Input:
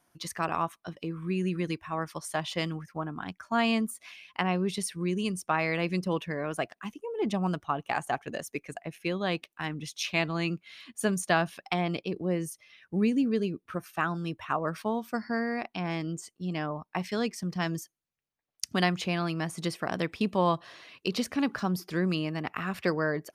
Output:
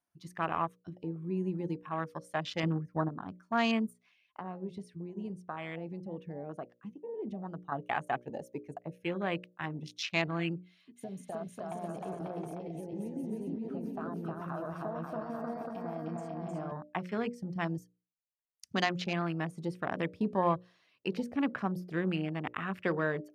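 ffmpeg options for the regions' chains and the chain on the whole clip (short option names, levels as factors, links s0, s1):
-filter_complex "[0:a]asettb=1/sr,asplit=3[s0][s1][s2];[s0]atrim=end=2.634[s3];[s1]atrim=start=2.63:end=3.09,asetpts=PTS-STARTPTS,afade=t=in:d=0.004:c=qsin,afade=t=out:st=0.456:d=0.004:c=qsin,highpass=41,highshelf=f=2400:g=-11.5,acontrast=63[s4];[s2]atrim=start=3.086[s5];[s3][s4]acrossfade=d=0.004:c1=hsin:c2=qsin[s6];[s6][s5]acrossfade=d=0.004:c1=qsin:c2=hsin,asettb=1/sr,asplit=3[s7][s8][s9];[s7]atrim=end=3.934[s10];[s8]atrim=start=3.93:end=7.72,asetpts=PTS-STARTPTS,afade=t=in:d=0.004:c=qsin,afade=t=out:st=3.786:d=0.004:c=qsin,aemphasis=mode=reproduction:type=50kf,acompressor=threshold=0.02:ratio=3:attack=3.2:release=140:knee=1:detection=peak[s11];[s9]atrim=start=7.716[s12];[s10][s11]acrossfade=d=0.004:c1=hsin:c2=qsin[s13];[s13][s12]acrossfade=d=0.004:c1=qsin:c2=hsin,asettb=1/sr,asplit=3[s14][s15][s16];[s14]atrim=end=10.654[s17];[s15]atrim=start=10.65:end=16.72,asetpts=PTS-STARTPTS,afade=t=in:d=0.004:c=qsin,afade=t=out:st=6.066:d=0.004:c=qsin,equalizer=f=650:w=7.5:g=10,acompressor=threshold=0.0224:ratio=12:attack=3.2:release=140:knee=1:detection=peak,aecho=1:1:310|542.5|716.9|847.7|945.7:0.794|0.631|0.501|0.398|0.316,atrim=end_sample=267687[s18];[s16]atrim=start=16.716[s19];[s17][s18]acrossfade=d=0.004:c1=hsin:c2=qsin[s20];[s20][s19]acrossfade=d=0.004:c1=qsin:c2=hsin,afwtdn=0.0141,bandreject=f=60:t=h:w=6,bandreject=f=120:t=h:w=6,bandreject=f=180:t=h:w=6,bandreject=f=240:t=h:w=6,bandreject=f=300:t=h:w=6,bandreject=f=360:t=h:w=6,bandreject=f=420:t=h:w=6,bandreject=f=480:t=h:w=6,bandreject=f=540:t=h:w=6,bandreject=f=600:t=h:w=6,volume=0.75"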